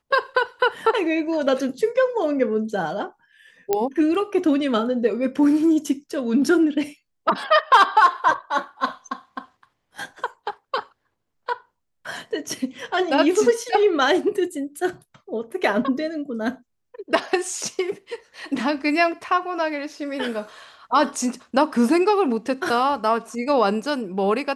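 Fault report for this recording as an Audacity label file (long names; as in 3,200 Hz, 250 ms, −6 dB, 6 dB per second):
3.730000	3.730000	click −7 dBFS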